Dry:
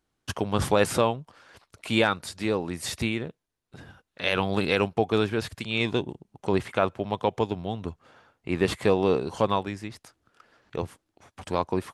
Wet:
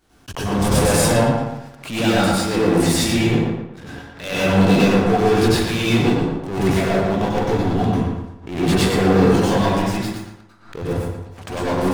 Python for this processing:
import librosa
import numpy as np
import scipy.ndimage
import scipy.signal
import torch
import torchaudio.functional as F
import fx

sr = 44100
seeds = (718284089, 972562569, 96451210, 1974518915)

p1 = fx.dynamic_eq(x, sr, hz=1400.0, q=1.0, threshold_db=-41.0, ratio=4.0, max_db=-8)
p2 = fx.leveller(p1, sr, passes=5)
p3 = fx.transient(p2, sr, attack_db=-5, sustain_db=5)
p4 = p3 + fx.echo_filtered(p3, sr, ms=115, feedback_pct=41, hz=4200.0, wet_db=-5.0, dry=0)
p5 = fx.rev_plate(p4, sr, seeds[0], rt60_s=0.73, hf_ratio=0.6, predelay_ms=85, drr_db=-7.5)
p6 = fx.backlash(p5, sr, play_db=-16.0)
p7 = p5 + F.gain(torch.from_numpy(p6), -7.0).numpy()
p8 = fx.pre_swell(p7, sr, db_per_s=120.0)
y = F.gain(torch.from_numpy(p8), -14.0).numpy()